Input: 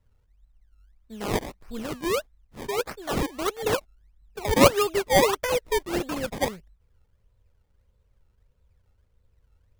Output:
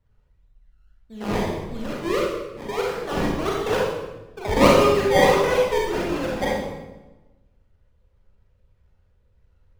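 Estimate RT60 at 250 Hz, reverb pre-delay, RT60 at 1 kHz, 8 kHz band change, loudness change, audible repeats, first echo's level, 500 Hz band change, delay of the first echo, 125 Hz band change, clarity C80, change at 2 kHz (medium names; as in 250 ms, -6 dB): 1.3 s, 30 ms, 1.0 s, -3.0 dB, +3.5 dB, no echo, no echo, +4.5 dB, no echo, +4.5 dB, 3.5 dB, +4.0 dB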